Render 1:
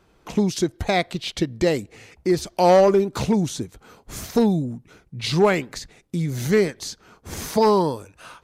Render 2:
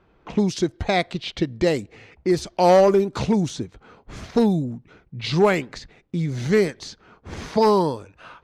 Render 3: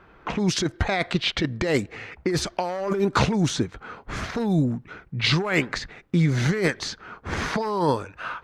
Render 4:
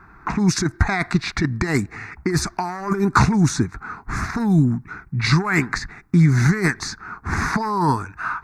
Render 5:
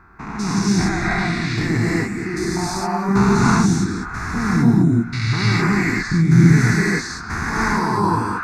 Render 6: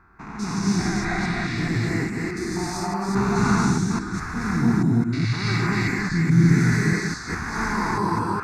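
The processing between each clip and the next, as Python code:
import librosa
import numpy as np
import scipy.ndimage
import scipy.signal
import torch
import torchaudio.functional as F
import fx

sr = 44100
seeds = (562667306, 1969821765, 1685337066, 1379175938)

y1 = fx.env_lowpass(x, sr, base_hz=2700.0, full_db=-13.0)
y2 = fx.peak_eq(y1, sr, hz=1500.0, db=8.5, octaves=1.4)
y2 = fx.over_compress(y2, sr, threshold_db=-22.0, ratio=-1.0)
y3 = fx.fixed_phaser(y2, sr, hz=1300.0, stages=4)
y3 = y3 * librosa.db_to_amplitude(7.5)
y4 = fx.spec_steps(y3, sr, hold_ms=200)
y4 = fx.rev_gated(y4, sr, seeds[0], gate_ms=320, shape='rising', drr_db=-6.0)
y4 = y4 * librosa.db_to_amplitude(-1.0)
y5 = fx.reverse_delay(y4, sr, ms=210, wet_db=-2.5)
y5 = y5 * librosa.db_to_amplitude(-6.5)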